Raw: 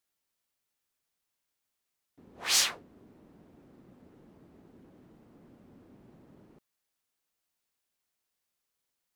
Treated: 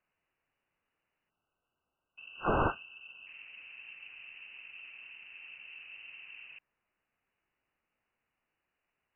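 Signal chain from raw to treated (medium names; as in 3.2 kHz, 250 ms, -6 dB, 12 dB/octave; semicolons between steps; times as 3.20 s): spectral selection erased 1.30–3.27 s, 340–1300 Hz; frequency inversion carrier 2.9 kHz; trim +7 dB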